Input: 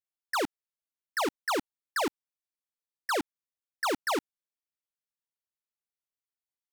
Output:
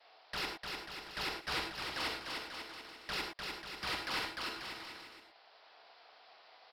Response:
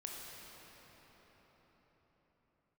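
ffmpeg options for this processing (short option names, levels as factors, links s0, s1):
-filter_complex "[0:a]highpass=f=690:t=q:w=4.1,acompressor=mode=upward:threshold=0.0631:ratio=2.5,agate=range=0.0224:threshold=0.00282:ratio=3:detection=peak,aresample=11025,aeval=exprs='(mod(23.7*val(0)+1,2)-1)/23.7':c=same,aresample=44100,tremolo=f=230:d=0.621,asoftclip=type=tanh:threshold=0.0211,aecho=1:1:300|540|732|885.6|1008:0.631|0.398|0.251|0.158|0.1[s0];[1:a]atrim=start_sample=2205,atrim=end_sample=6615,asetrate=52920,aresample=44100[s1];[s0][s1]afir=irnorm=-1:irlink=0,volume=2.37"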